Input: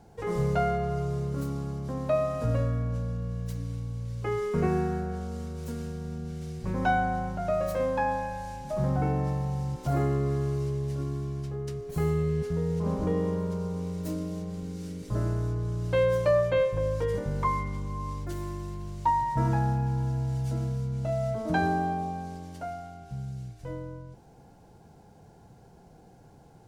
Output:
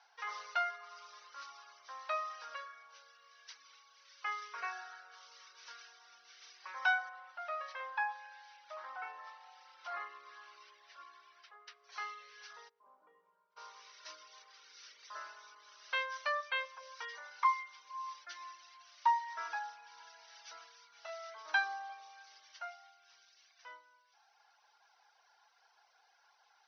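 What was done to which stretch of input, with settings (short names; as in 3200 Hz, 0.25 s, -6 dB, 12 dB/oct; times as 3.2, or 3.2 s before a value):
7.09–11.84 air absorption 180 m
12.68–13.56 band-pass 320 Hz -> 130 Hz, Q 2
whole clip: HPF 1100 Hz 24 dB/oct; reverb removal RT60 1 s; Chebyshev low-pass 6000 Hz, order 8; gain +3 dB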